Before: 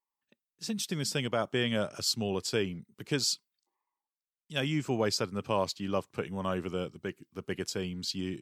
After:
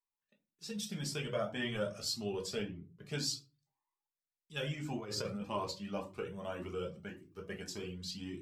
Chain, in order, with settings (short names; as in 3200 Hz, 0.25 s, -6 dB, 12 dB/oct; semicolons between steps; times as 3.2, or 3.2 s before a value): 2.62–3.04 LPF 1200 Hz 6 dB/oct; shoebox room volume 140 m³, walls furnished, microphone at 1.3 m; 4.99–5.45 negative-ratio compressor -30 dBFS, ratio -1; cascading flanger rising 1.8 Hz; gain -5 dB